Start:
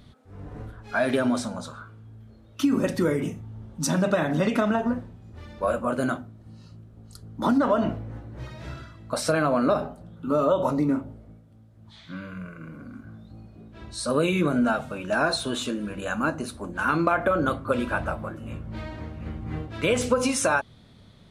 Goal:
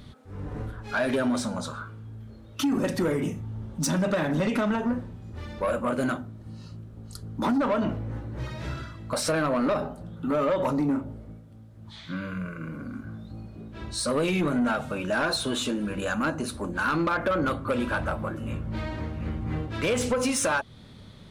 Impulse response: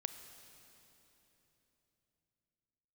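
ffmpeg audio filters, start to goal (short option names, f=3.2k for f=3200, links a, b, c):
-filter_complex "[0:a]bandreject=f=690:w=12,asplit=2[a][b];[b]acompressor=threshold=-32dB:ratio=6,volume=0.5dB[c];[a][c]amix=inputs=2:normalize=0,asoftclip=type=tanh:threshold=-17.5dB,volume=-1.5dB"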